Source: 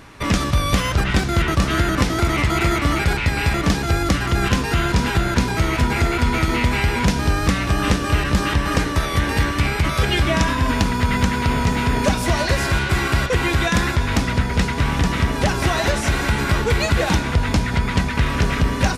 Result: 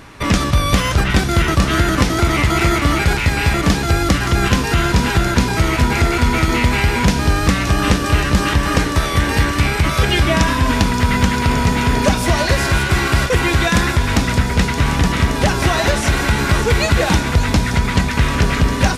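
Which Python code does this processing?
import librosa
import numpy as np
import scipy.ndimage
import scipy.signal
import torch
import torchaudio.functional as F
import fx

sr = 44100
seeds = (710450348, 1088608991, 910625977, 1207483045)

y = fx.echo_wet_highpass(x, sr, ms=572, feedback_pct=75, hz=4700.0, wet_db=-7.0)
y = F.gain(torch.from_numpy(y), 3.5).numpy()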